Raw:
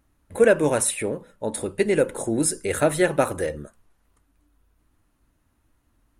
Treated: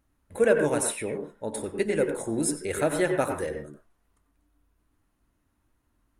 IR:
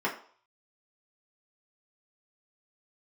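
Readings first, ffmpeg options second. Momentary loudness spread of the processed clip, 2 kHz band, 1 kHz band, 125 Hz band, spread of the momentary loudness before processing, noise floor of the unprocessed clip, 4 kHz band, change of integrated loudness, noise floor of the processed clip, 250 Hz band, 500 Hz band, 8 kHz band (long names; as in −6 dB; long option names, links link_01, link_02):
12 LU, −4.0 dB, −4.5 dB, −5.0 dB, 12 LU, −68 dBFS, −5.5 dB, −4.5 dB, −73 dBFS, −3.5 dB, −4.0 dB, −5.5 dB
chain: -filter_complex "[0:a]asplit=2[link_01][link_02];[1:a]atrim=start_sample=2205,atrim=end_sample=3087,adelay=91[link_03];[link_02][link_03]afir=irnorm=-1:irlink=0,volume=-14.5dB[link_04];[link_01][link_04]amix=inputs=2:normalize=0,volume=-5.5dB"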